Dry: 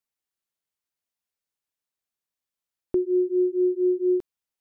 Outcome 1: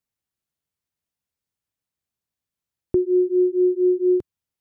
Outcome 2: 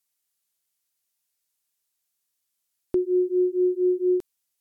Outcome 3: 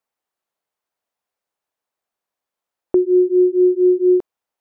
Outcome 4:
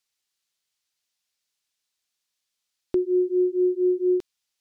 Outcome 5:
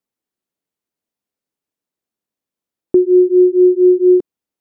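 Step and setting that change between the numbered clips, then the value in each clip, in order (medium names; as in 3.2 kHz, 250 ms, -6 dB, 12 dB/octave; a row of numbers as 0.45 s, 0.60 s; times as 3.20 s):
peaking EQ, frequency: 95 Hz, 12 kHz, 730 Hz, 4.6 kHz, 280 Hz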